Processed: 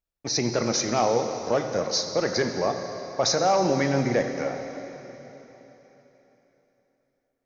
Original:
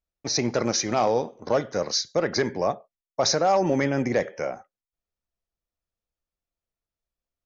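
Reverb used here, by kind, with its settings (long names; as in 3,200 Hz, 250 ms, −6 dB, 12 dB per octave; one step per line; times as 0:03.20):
dense smooth reverb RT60 3.7 s, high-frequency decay 1×, DRR 5.5 dB
level −1 dB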